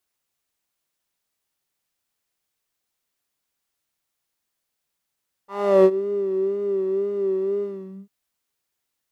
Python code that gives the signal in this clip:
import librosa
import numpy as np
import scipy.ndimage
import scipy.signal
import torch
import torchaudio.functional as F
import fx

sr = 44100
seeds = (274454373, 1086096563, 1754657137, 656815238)

y = fx.sub_patch_vibrato(sr, seeds[0], note=67, wave='square', wave2='saw', interval_st=0, detune_cents=16, level2_db=-9.0, sub_db=-1.0, noise_db=-5.5, kind='bandpass', cutoff_hz=170.0, q=5.4, env_oct=2.5, env_decay_s=0.51, env_sustain_pct=45, attack_ms=362.0, decay_s=0.06, sustain_db=-19, release_s=0.45, note_s=2.15, lfo_hz=2.0, vibrato_cents=59)